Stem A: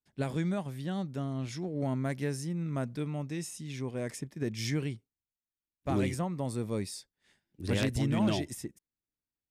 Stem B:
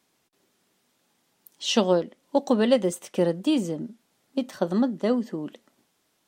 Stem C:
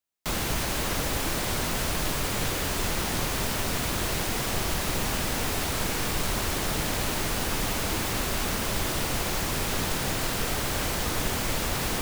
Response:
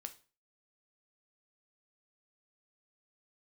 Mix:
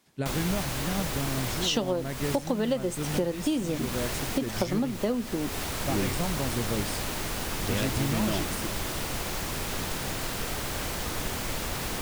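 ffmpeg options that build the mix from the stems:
-filter_complex "[0:a]volume=2.5dB[link_01];[1:a]volume=2.5dB,asplit=2[link_02][link_03];[2:a]volume=-4dB[link_04];[link_03]apad=whole_len=529745[link_05];[link_04][link_05]sidechaincompress=threshold=-30dB:ratio=8:attack=36:release=285[link_06];[link_01][link_02]amix=inputs=2:normalize=0,acompressor=threshold=-24dB:ratio=6,volume=0dB[link_07];[link_06][link_07]amix=inputs=2:normalize=0"

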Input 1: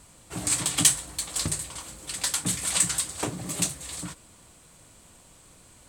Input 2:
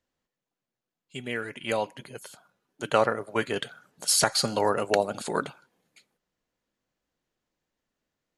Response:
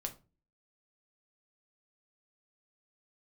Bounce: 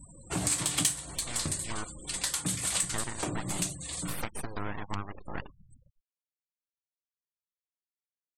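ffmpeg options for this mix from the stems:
-filter_complex "[0:a]volume=2dB,asplit=2[link_01][link_02];[link_02]volume=-3dB[link_03];[1:a]lowpass=6300,lowshelf=frequency=350:gain=3.5,aeval=exprs='abs(val(0))':channel_layout=same,volume=-7.5dB,asplit=2[link_04][link_05];[link_05]apad=whole_len=259428[link_06];[link_01][link_06]sidechaincompress=threshold=-48dB:ratio=5:attack=16:release=1210[link_07];[2:a]atrim=start_sample=2205[link_08];[link_03][link_08]afir=irnorm=-1:irlink=0[link_09];[link_07][link_04][link_09]amix=inputs=3:normalize=0,afftfilt=real='re*gte(hypot(re,im),0.00794)':imag='im*gte(hypot(re,im),0.00794)':win_size=1024:overlap=0.75,acompressor=threshold=-29dB:ratio=3"

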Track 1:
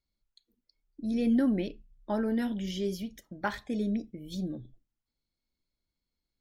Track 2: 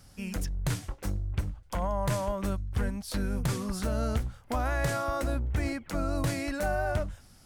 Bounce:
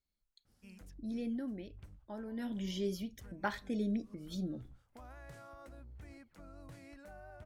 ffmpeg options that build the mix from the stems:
ffmpeg -i stem1.wav -i stem2.wav -filter_complex "[0:a]volume=5.5dB,afade=type=out:start_time=0.81:duration=0.58:silence=0.334965,afade=type=in:start_time=2.32:duration=0.3:silence=0.298538,asplit=2[link_01][link_02];[1:a]alimiter=level_in=1.5dB:limit=-24dB:level=0:latency=1:release=289,volume=-1.5dB,adynamicequalizer=threshold=0.00178:dfrequency=3500:dqfactor=0.7:tfrequency=3500:tqfactor=0.7:attack=5:release=100:ratio=0.375:range=2.5:mode=cutabove:tftype=highshelf,adelay=450,volume=-18.5dB[link_03];[link_02]apad=whole_len=348702[link_04];[link_03][link_04]sidechaincompress=threshold=-54dB:ratio=6:attack=28:release=115[link_05];[link_01][link_05]amix=inputs=2:normalize=0" out.wav

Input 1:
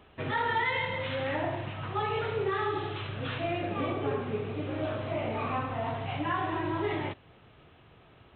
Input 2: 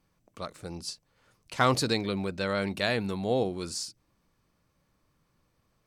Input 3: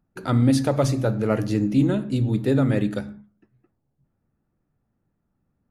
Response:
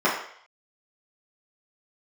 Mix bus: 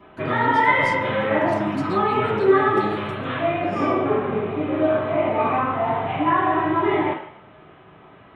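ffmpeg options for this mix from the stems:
-filter_complex "[0:a]volume=-3dB,asplit=2[link_01][link_02];[link_02]volume=-4.5dB[link_03];[1:a]highpass=730,acompressor=threshold=-32dB:ratio=6,volume=-6dB,asplit=2[link_04][link_05];[link_05]volume=-19.5dB[link_06];[2:a]aemphasis=mode=reproduction:type=cd,volume=-10.5dB,asplit=3[link_07][link_08][link_09];[link_08]volume=-13.5dB[link_10];[link_09]apad=whole_len=258552[link_11];[link_04][link_11]sidechaingate=range=-33dB:threshold=-56dB:ratio=16:detection=peak[link_12];[link_12][link_07]amix=inputs=2:normalize=0,aecho=1:1:4:0.65,acompressor=threshold=-29dB:ratio=6,volume=0dB[link_13];[3:a]atrim=start_sample=2205[link_14];[link_03][link_06][link_10]amix=inputs=3:normalize=0[link_15];[link_15][link_14]afir=irnorm=-1:irlink=0[link_16];[link_01][link_13][link_16]amix=inputs=3:normalize=0"

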